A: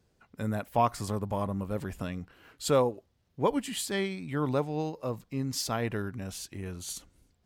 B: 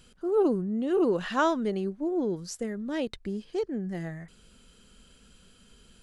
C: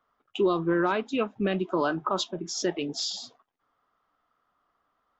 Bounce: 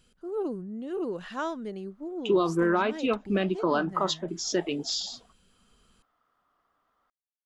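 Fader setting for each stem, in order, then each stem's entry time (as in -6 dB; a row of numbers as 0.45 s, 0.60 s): mute, -7.5 dB, +0.5 dB; mute, 0.00 s, 1.90 s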